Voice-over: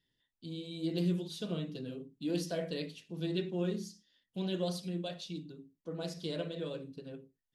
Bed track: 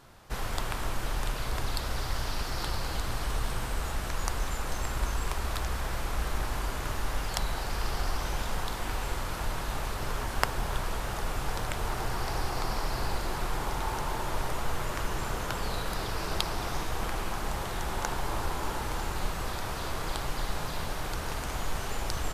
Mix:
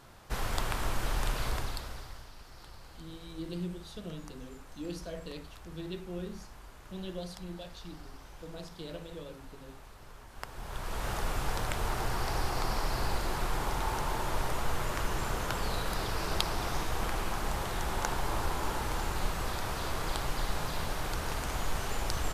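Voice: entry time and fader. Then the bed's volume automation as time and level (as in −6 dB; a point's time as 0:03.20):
2.55 s, −5.5 dB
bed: 0:01.48 0 dB
0:02.31 −18.5 dB
0:10.29 −18.5 dB
0:11.07 −0.5 dB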